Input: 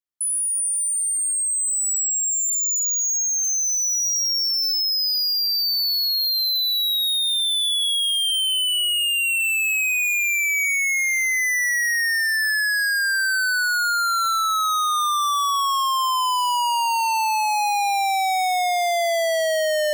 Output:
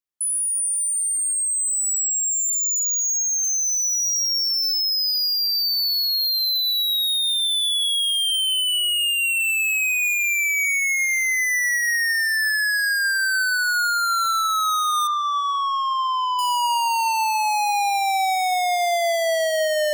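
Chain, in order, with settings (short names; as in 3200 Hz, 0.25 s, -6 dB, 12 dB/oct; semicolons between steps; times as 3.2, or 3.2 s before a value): 15.07–16.39 air absorption 220 m; plate-style reverb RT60 2.8 s, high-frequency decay 0.25×, DRR 19 dB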